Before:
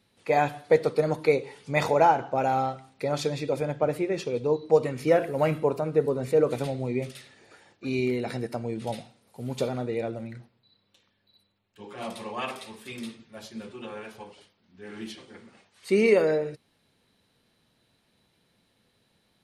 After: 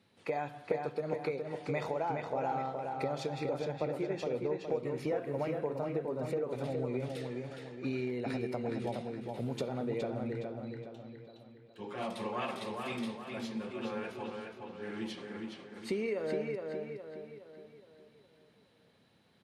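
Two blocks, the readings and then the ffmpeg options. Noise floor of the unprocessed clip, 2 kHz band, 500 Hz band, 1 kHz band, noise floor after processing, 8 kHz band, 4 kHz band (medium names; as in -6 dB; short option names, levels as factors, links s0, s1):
-70 dBFS, -9.5 dB, -10.0 dB, -10.5 dB, -66 dBFS, -11.0 dB, -7.0 dB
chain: -filter_complex "[0:a]highpass=90,aemphasis=mode=reproduction:type=cd,acompressor=threshold=0.0224:ratio=6,asplit=2[s0][s1];[s1]adelay=416,lowpass=f=4700:p=1,volume=0.631,asplit=2[s2][s3];[s3]adelay=416,lowpass=f=4700:p=1,volume=0.46,asplit=2[s4][s5];[s5]adelay=416,lowpass=f=4700:p=1,volume=0.46,asplit=2[s6][s7];[s7]adelay=416,lowpass=f=4700:p=1,volume=0.46,asplit=2[s8][s9];[s9]adelay=416,lowpass=f=4700:p=1,volume=0.46,asplit=2[s10][s11];[s11]adelay=416,lowpass=f=4700:p=1,volume=0.46[s12];[s2][s4][s6][s8][s10][s12]amix=inputs=6:normalize=0[s13];[s0][s13]amix=inputs=2:normalize=0"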